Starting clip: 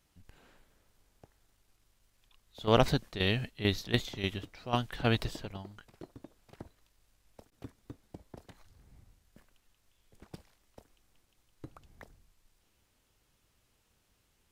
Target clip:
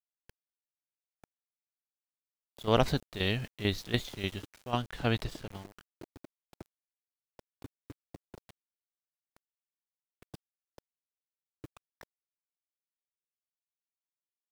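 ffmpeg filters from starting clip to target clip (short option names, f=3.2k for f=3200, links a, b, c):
-filter_complex "[0:a]aeval=exprs='val(0)*gte(abs(val(0)),0.00562)':c=same,asettb=1/sr,asplit=3[a][b][c];[a]atrim=end=4.714[d];[b]atrim=start=4.71:end=5.47,asetpts=PTS-STARTPTS,afade=t=in:d=0.004:c=qsin,afade=t=out:st=0.756:d=0.004:c=qsin,highshelf=f=7.7k:g=-5[e];[c]atrim=start=5.466[f];[d][e]acrossfade=d=0.004:c1=hsin:c2=qsin[g];[g][f]acrossfade=d=0.004:c1=qsin:c2=hsin,volume=-1dB"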